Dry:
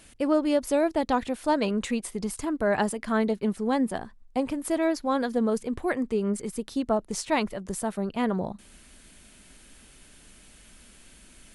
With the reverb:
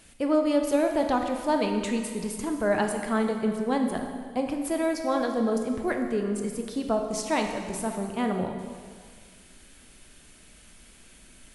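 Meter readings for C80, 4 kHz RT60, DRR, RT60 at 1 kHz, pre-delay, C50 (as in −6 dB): 6.5 dB, 1.7 s, 3.5 dB, 1.8 s, 7 ms, 5.0 dB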